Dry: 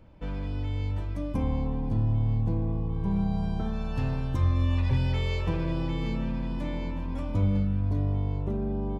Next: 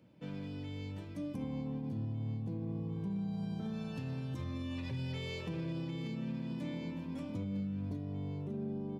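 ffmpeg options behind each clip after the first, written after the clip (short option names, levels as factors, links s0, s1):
-af "highpass=f=130:w=0.5412,highpass=f=130:w=1.3066,equalizer=f=990:t=o:w=1.9:g=-9.5,alimiter=level_in=1.68:limit=0.0631:level=0:latency=1:release=79,volume=0.596,volume=0.75"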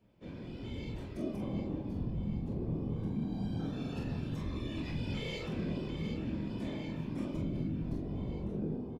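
-filter_complex "[0:a]dynaudnorm=f=360:g=3:m=2,afftfilt=real='hypot(re,im)*cos(2*PI*random(0))':imag='hypot(re,im)*sin(2*PI*random(1))':win_size=512:overlap=0.75,asplit=2[s0][s1];[s1]aecho=0:1:25|44:0.531|0.596[s2];[s0][s2]amix=inputs=2:normalize=0"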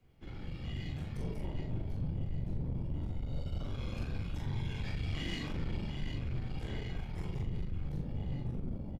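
-filter_complex "[0:a]afreqshift=-190,aeval=exprs='(tanh(63.1*val(0)+0.45)-tanh(0.45))/63.1':c=same,asplit=2[s0][s1];[s1]adelay=41,volume=0.501[s2];[s0][s2]amix=inputs=2:normalize=0,volume=1.5"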